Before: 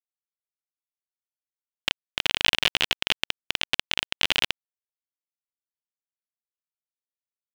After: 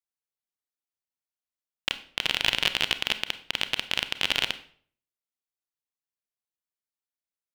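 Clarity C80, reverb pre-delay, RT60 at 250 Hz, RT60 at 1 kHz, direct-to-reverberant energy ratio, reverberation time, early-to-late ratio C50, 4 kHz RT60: 17.5 dB, 28 ms, 0.60 s, 0.50 s, 11.0 dB, 0.55 s, 14.0 dB, 0.40 s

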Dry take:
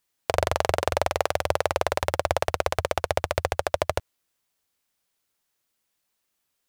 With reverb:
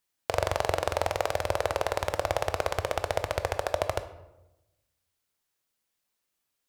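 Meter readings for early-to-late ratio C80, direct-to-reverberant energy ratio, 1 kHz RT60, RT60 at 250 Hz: 15.0 dB, 10.0 dB, 0.90 s, 1.2 s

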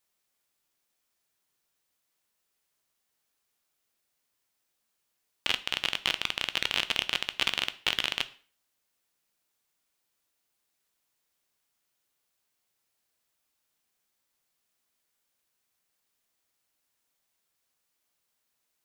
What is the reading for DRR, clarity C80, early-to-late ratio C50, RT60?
12.0 dB, 22.0 dB, 17.5 dB, 0.40 s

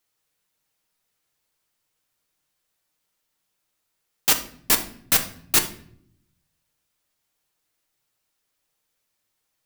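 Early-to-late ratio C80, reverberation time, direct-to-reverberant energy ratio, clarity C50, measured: 16.0 dB, 0.60 s, 3.0 dB, 11.5 dB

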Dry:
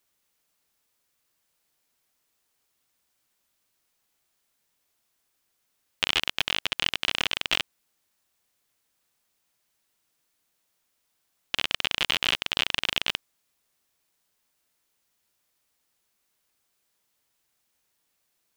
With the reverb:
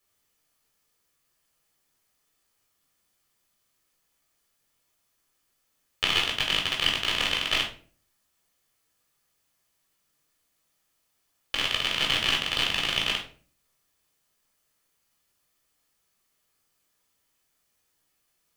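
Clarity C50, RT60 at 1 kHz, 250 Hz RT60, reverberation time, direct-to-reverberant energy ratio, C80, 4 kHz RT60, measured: 7.5 dB, 0.35 s, 0.65 s, 0.45 s, -0.5 dB, 13.5 dB, 0.30 s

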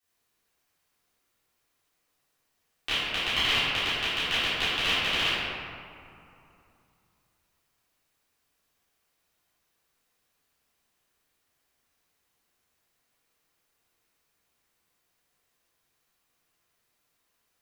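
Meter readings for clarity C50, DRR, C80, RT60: -4.5 dB, -16.5 dB, -2.0 dB, 2.7 s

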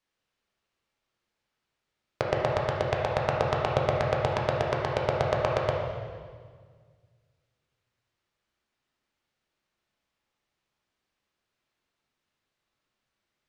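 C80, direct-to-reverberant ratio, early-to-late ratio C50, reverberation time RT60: 3.0 dB, -2.0 dB, 0.5 dB, 1.7 s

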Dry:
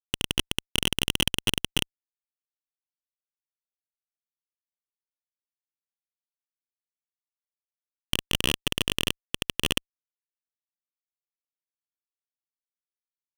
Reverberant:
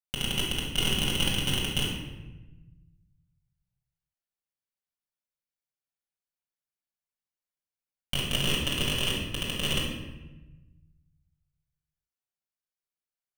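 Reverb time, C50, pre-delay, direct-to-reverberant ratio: 1.1 s, 1.5 dB, 5 ms, -5.0 dB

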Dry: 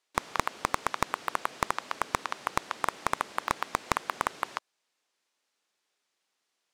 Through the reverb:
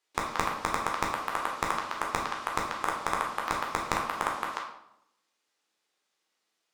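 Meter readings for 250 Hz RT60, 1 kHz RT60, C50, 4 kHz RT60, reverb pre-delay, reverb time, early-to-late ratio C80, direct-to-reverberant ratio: 0.95 s, 0.75 s, 5.0 dB, 0.55 s, 12 ms, 0.80 s, 8.0 dB, -1.5 dB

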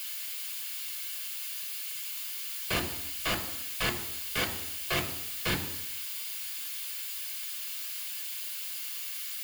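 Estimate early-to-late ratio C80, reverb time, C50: 13.0 dB, 0.85 s, 10.5 dB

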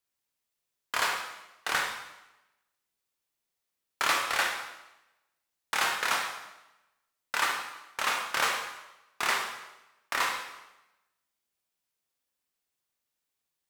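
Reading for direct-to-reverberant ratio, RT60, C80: 1.0 dB, 0.95 s, 7.0 dB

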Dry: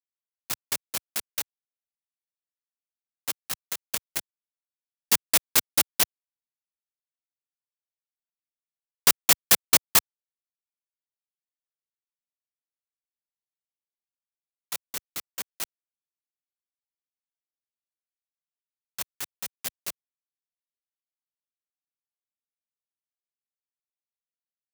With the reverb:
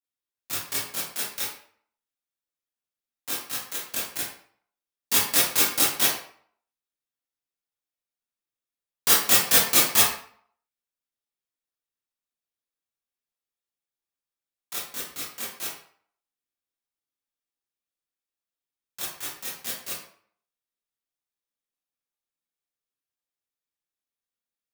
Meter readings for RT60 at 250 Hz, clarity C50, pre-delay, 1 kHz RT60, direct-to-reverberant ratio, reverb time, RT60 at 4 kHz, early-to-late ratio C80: 0.50 s, 2.0 dB, 19 ms, 0.55 s, -8.5 dB, 0.55 s, 0.40 s, 6.5 dB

